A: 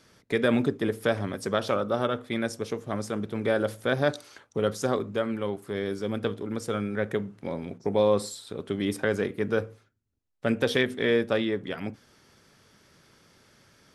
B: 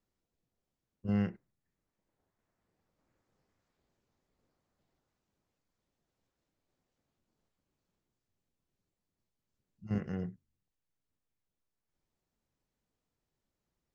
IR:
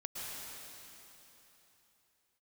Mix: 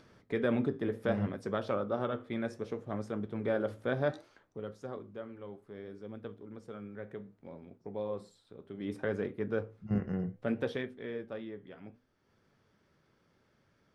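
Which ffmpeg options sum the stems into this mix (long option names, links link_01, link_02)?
-filter_complex "[0:a]acompressor=mode=upward:threshold=-45dB:ratio=2.5,volume=6.5dB,afade=type=out:start_time=4.1:duration=0.51:silence=0.354813,afade=type=in:start_time=8.73:duration=0.25:silence=0.398107,afade=type=out:start_time=10.58:duration=0.36:silence=0.375837[link_01];[1:a]dynaudnorm=framelen=260:gausssize=11:maxgain=12.5dB,volume=-5.5dB[link_02];[link_01][link_02]amix=inputs=2:normalize=0,lowpass=frequency=1500:poles=1,flanger=delay=8.5:depth=7.9:regen=-72:speed=0.64:shape=sinusoidal"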